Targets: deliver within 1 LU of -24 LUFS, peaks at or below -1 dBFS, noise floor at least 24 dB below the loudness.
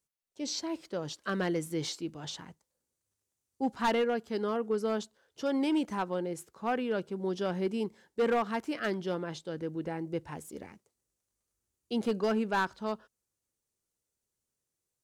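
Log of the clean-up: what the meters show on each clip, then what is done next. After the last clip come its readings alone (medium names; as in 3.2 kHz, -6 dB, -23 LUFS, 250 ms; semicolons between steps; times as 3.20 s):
clipped samples 0.8%; clipping level -23.0 dBFS; loudness -33.0 LUFS; peak level -23.0 dBFS; loudness target -24.0 LUFS
-> clip repair -23 dBFS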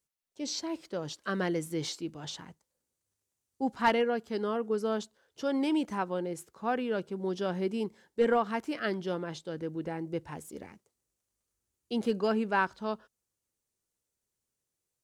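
clipped samples 0.0%; loudness -32.5 LUFS; peak level -14.0 dBFS; loudness target -24.0 LUFS
-> trim +8.5 dB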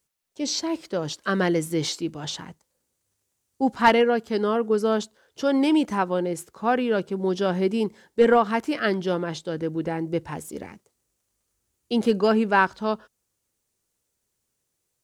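loudness -24.0 LUFS; peak level -5.5 dBFS; noise floor -78 dBFS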